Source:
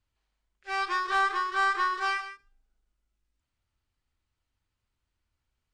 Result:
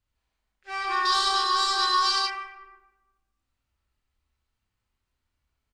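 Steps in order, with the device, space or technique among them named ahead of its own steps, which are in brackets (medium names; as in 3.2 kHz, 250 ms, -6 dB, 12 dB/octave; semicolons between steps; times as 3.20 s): bathroom (reverberation RT60 1.1 s, pre-delay 63 ms, DRR -1.5 dB); 1.05–2.27 s: resonant high shelf 3 kHz +11.5 dB, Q 3; doubling 30 ms -6.5 dB; trim -2.5 dB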